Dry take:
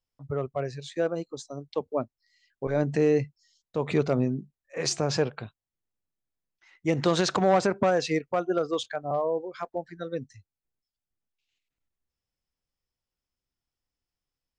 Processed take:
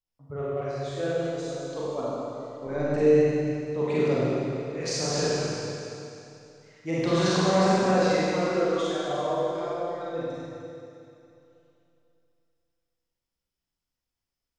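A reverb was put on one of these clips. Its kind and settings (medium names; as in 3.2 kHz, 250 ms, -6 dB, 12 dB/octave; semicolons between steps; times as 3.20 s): Schroeder reverb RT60 2.8 s, combs from 33 ms, DRR -9 dB; trim -8 dB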